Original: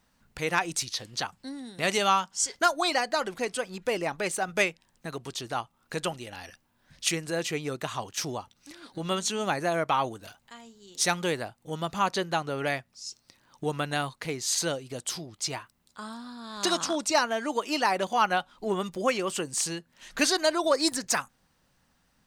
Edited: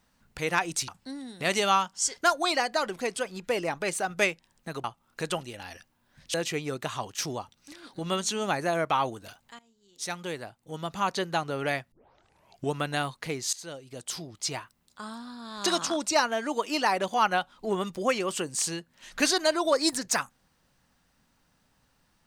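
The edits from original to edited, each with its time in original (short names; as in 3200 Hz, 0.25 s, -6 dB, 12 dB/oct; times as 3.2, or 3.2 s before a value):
0.88–1.26 cut
5.22–5.57 cut
7.07–7.33 cut
10.58–12.4 fade in, from -17.5 dB
12.91 tape start 0.81 s
14.52–15.29 fade in, from -21 dB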